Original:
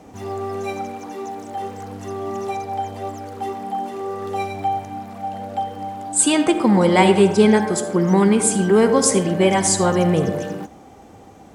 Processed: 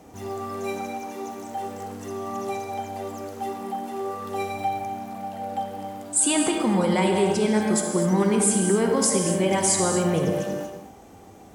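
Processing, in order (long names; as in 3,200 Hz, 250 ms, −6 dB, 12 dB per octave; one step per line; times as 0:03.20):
brickwall limiter −10 dBFS, peak gain reduction 8.5 dB
high-shelf EQ 9,800 Hz +11 dB
reverb whose tail is shaped and stops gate 280 ms flat, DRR 4 dB
level −4.5 dB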